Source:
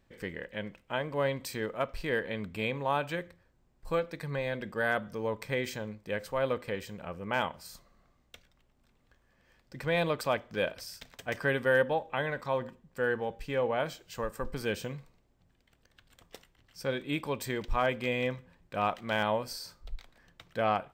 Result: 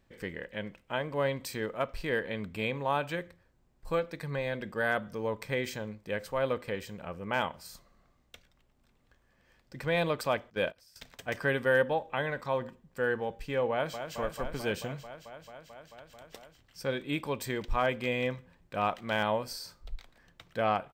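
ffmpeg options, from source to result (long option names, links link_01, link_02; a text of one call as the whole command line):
ffmpeg -i in.wav -filter_complex "[0:a]asettb=1/sr,asplit=3[link_01][link_02][link_03];[link_01]atrim=end=10.504[link_04];[link_02]atrim=start=10.5:end=10.96,asetpts=PTS-STARTPTS,afade=type=in:duration=0.004:curve=qsin,afade=type=out:start_time=0.456:duration=0.004:curve=qsin,agate=range=-17dB:threshold=-39dB:ratio=16:release=100:detection=peak[link_05];[link_03]atrim=start=10.956[link_06];[link_04][link_05]acrossfade=duration=0.004:curve1=hsin:curve2=qsin[link_07];[link_07][link_06]acrossfade=duration=0.004:curve1=qsin:curve2=hsin,asplit=2[link_08][link_09];[link_09]afade=type=in:start_time=13.71:duration=0.01,afade=type=out:start_time=14.15:duration=0.01,aecho=0:1:220|440|660|880|1100|1320|1540|1760|1980|2200|2420|2640:0.398107|0.338391|0.287632|0.244488|0.207814|0.176642|0.150146|0.127624|0.10848|0.0922084|0.0783771|0.0666205[link_10];[link_08][link_10]amix=inputs=2:normalize=0" out.wav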